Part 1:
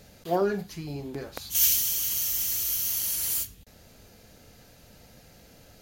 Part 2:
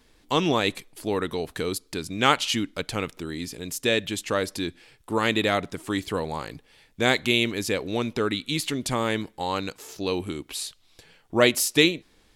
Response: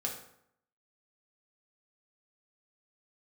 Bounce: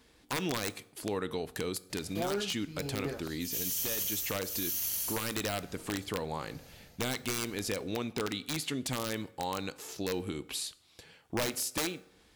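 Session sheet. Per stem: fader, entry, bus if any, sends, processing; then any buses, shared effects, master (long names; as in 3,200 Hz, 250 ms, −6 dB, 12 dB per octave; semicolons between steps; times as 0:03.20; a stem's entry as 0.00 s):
+0.5 dB, 1.90 s, no send, shaped tremolo triangle 1.1 Hz, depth 95%
−3.0 dB, 0.00 s, send −14 dB, high-pass filter 48 Hz 12 dB per octave; downward compressor 2 to 1, threshold −33 dBFS, peak gain reduction 11 dB; wrap-around overflow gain 21 dB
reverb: on, RT60 0.70 s, pre-delay 3 ms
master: brickwall limiter −23.5 dBFS, peak gain reduction 9.5 dB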